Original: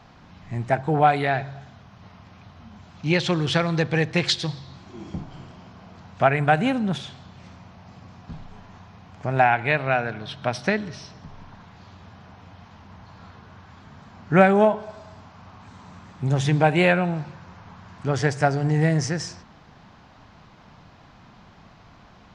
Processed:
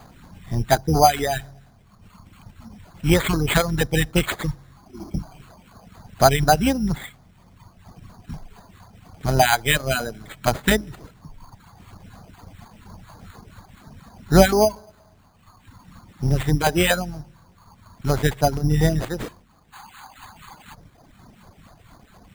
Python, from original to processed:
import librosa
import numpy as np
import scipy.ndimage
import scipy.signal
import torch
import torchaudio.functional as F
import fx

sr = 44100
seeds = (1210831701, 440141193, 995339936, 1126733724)

p1 = fx.octave_divider(x, sr, octaves=2, level_db=-5.0)
p2 = fx.spec_box(p1, sr, start_s=19.73, length_s=1.01, low_hz=750.0, high_hz=3000.0, gain_db=11)
p3 = fx.filter_lfo_notch(p2, sr, shape='saw_down', hz=4.2, low_hz=420.0, high_hz=5900.0, q=0.84)
p4 = fx.rider(p3, sr, range_db=10, speed_s=2.0)
p5 = p3 + (p4 * 10.0 ** (0.0 / 20.0))
p6 = fx.dereverb_blind(p5, sr, rt60_s=2.0)
p7 = np.repeat(p6[::8], 8)[:len(p6)]
y = p7 * 10.0 ** (-2.0 / 20.0)